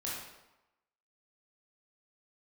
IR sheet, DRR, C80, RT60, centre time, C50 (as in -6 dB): -6.5 dB, 3.5 dB, 1.0 s, 68 ms, 0.0 dB